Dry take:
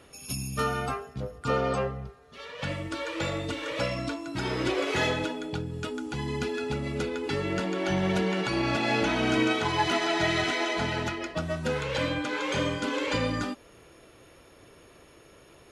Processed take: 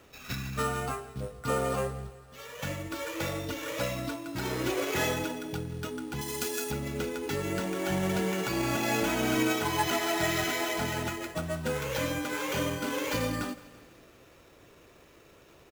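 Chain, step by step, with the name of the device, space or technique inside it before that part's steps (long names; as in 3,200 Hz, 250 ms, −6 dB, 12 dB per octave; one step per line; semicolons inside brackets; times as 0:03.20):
early companding sampler (sample-rate reduction 9,200 Hz, jitter 0%; log-companded quantiser 6 bits)
0:06.21–0:06.71: bass and treble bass −9 dB, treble +12 dB
repeating echo 167 ms, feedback 59%, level −19.5 dB
level −2.5 dB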